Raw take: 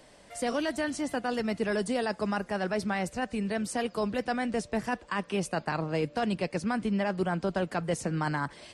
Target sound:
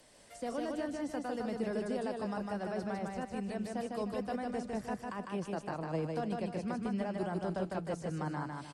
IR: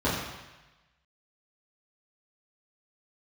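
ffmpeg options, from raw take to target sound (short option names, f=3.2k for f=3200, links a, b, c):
-filter_complex "[0:a]acrossover=split=6600[a][b];[b]acompressor=threshold=-52dB:ratio=4:attack=1:release=60[c];[a][c]amix=inputs=2:normalize=0,aemphasis=mode=production:type=cd,acrossover=split=410|1200[d][e][f];[f]acompressor=threshold=-46dB:ratio=6[g];[d][e][g]amix=inputs=3:normalize=0,aecho=1:1:153|306|459|612|765:0.708|0.269|0.102|0.0388|0.0148,volume=-7.5dB"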